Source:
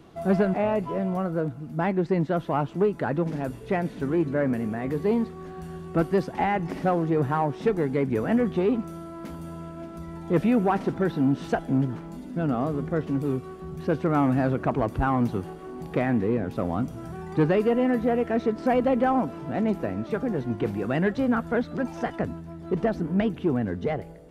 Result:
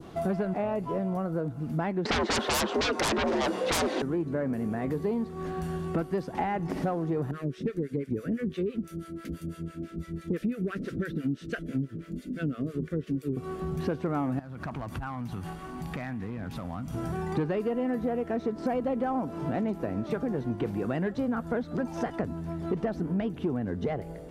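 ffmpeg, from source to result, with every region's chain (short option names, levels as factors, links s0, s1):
-filter_complex "[0:a]asettb=1/sr,asplit=3[s0][s1][s2];[s0]atrim=end=2.054[s3];[s1]atrim=start=2.05:end=4.02,asetpts=PTS-STARTPTS,afade=t=in:d=0.004:c=qsin,afade=t=out:st=1.966:d=0.004:c=qsin,afreqshift=71,highpass=530,lowpass=4900,aeval=exprs='0.2*sin(PI/2*10*val(0)/0.2)':c=same[s4];[s2]atrim=start=4.016[s5];[s3][s4]acrossfade=d=0.004:c1=hsin:c2=qsin[s6];[s6][s5]acrossfade=d=0.004:c1=qsin:c2=hsin,asettb=1/sr,asplit=3[s7][s8][s9];[s7]atrim=end=7.314[s10];[s8]atrim=start=7.31:end=13.37,asetpts=PTS-STARTPTS,afade=t=in:d=0.004:c=qsin,afade=t=out:st=6.056:d=0.004:c=qsin,acrossover=split=590[s11][s12];[s11]aeval=exprs='val(0)*(1-1/2+1/2*cos(2*PI*6*n/s))':c=same[s13];[s12]aeval=exprs='val(0)*(1-1/2-1/2*cos(2*PI*6*n/s))':c=same[s14];[s13][s14]amix=inputs=2:normalize=0,asuperstop=centerf=860:order=4:qfactor=0.88[s15];[s9]atrim=start=13.366[s16];[s10][s15]acrossfade=d=0.004:c1=hsin:c2=qsin[s17];[s17][s16]acrossfade=d=0.004:c1=qsin:c2=hsin,asettb=1/sr,asplit=3[s18][s19][s20];[s18]atrim=end=14.394[s21];[s19]atrim=start=14.39:end=16.94,asetpts=PTS-STARTPTS,afade=t=in:d=0.004:c=qsin,afade=t=out:st=2.546:d=0.004:c=qsin,equalizer=f=420:w=1.2:g=-13.5,acompressor=threshold=0.0158:ratio=16:attack=3.2:release=140:knee=1:detection=peak,volume=47.3,asoftclip=hard,volume=0.0211[s22];[s20]atrim=start=16.936[s23];[s21][s22]acrossfade=d=0.004:c1=hsin:c2=qsin[s24];[s24][s23]acrossfade=d=0.004:c1=qsin:c2=hsin,adynamicequalizer=threshold=0.00501:dfrequency=2400:dqfactor=0.89:tfrequency=2400:tqfactor=0.89:attack=5:release=100:ratio=0.375:range=2.5:mode=cutabove:tftype=bell,acompressor=threshold=0.0224:ratio=5,volume=1.88"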